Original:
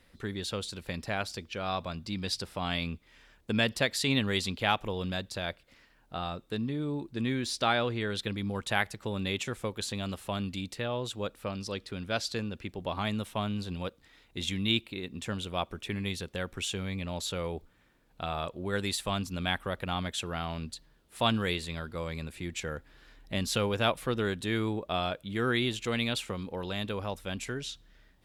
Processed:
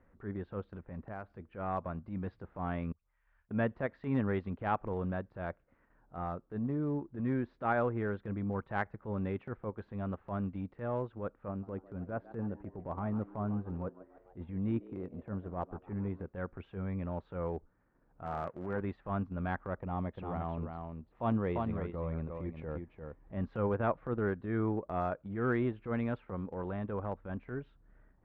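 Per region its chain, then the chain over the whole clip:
0.79–1.30 s: compression, threshold -34 dBFS + distance through air 210 m
2.92–3.51 s: amplifier tone stack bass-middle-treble 10-0-10 + compression 10:1, threshold -59 dBFS + phase dispersion highs, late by 84 ms, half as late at 1.1 kHz
11.48–16.26 s: low-pass 1.1 kHz 6 dB/octave + frequency-shifting echo 148 ms, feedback 55%, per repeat +91 Hz, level -16 dB
18.23–18.81 s: CVSD coder 16 kbps + high-pass 100 Hz
19.80–23.34 s: peaking EQ 1.5 kHz -10 dB 0.43 oct + delay 346 ms -5.5 dB
whole clip: low-pass 1.5 kHz 24 dB/octave; transient shaper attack -10 dB, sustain -6 dB

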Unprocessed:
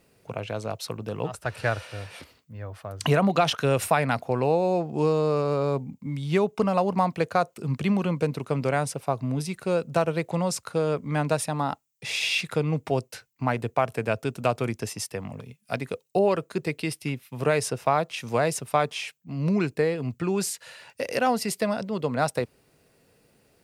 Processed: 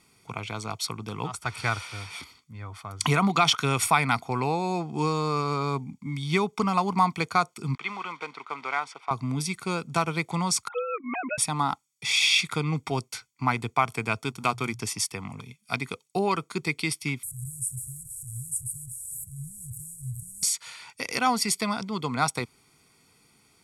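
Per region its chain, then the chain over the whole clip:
7.75–9.11 s: block-companded coder 5-bit + band-pass 670–2500 Hz
10.68–11.38 s: formants replaced by sine waves + high-pass 350 Hz + bass shelf 470 Hz +5.5 dB
14.23–14.80 s: companding laws mixed up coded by A + hum notches 60/120 Hz
17.23–20.43 s: one-bit delta coder 64 kbps, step -27 dBFS + Chebyshev band-stop 130–8200 Hz, order 5
whole clip: low-pass 9.2 kHz 12 dB/octave; tilt EQ +2 dB/octave; comb 0.9 ms, depth 79%

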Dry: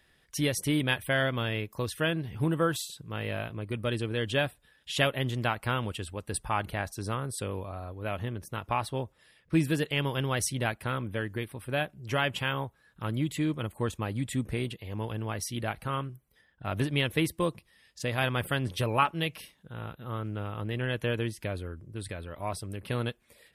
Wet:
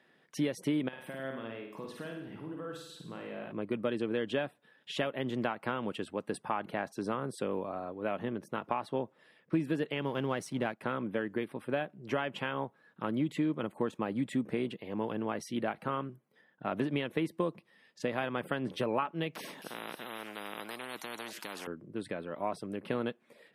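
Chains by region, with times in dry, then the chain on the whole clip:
0.88–3.52 s: compression 16:1, threshold -40 dBFS + flutter echo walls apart 9 m, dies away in 0.71 s
10.01–10.81 s: companding laws mixed up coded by A + bass shelf 79 Hz +10 dB
19.35–21.67 s: treble shelf 8.9 kHz +9.5 dB + feedback echo behind a high-pass 267 ms, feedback 47%, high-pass 5.1 kHz, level -14 dB + spectrum-flattening compressor 10:1
whole clip: high-pass 180 Hz 24 dB/octave; compression 5:1, threshold -31 dBFS; low-pass 1.2 kHz 6 dB/octave; trim +4.5 dB

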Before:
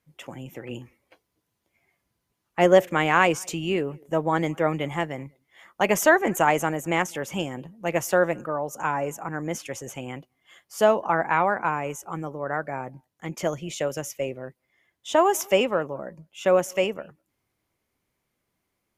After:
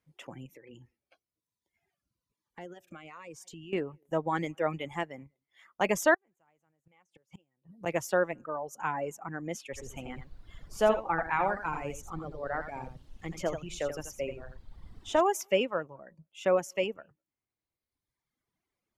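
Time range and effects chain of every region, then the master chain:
0.46–3.73 s: compression 3:1, threshold -39 dBFS + Shepard-style phaser falling 1.1 Hz
6.14–7.86 s: inverted gate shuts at -23 dBFS, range -33 dB + peaking EQ 130 Hz +5 dB 0.94 oct
9.72–15.20 s: band-stop 1 kHz, Q 28 + added noise brown -40 dBFS + delay 84 ms -4.5 dB
whole clip: reverb removal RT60 1.5 s; treble shelf 12 kHz -11.5 dB; trim -5.5 dB

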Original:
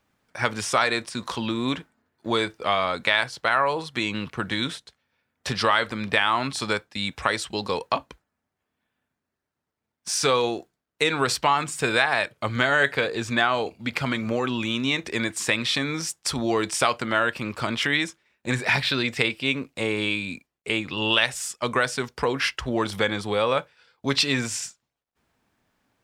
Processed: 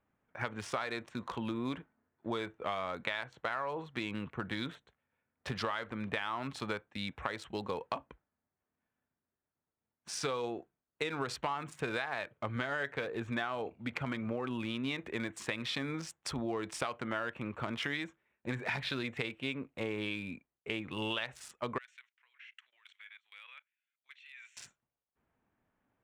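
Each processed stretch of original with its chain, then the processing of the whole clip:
21.78–24.57 s: Chebyshev high-pass 2.2 kHz, order 3 + level held to a coarse grid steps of 19 dB + treble shelf 6.9 kHz -10 dB
whole clip: local Wiener filter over 9 samples; treble shelf 4.8 kHz -8 dB; compression, threshold -24 dBFS; trim -7.5 dB

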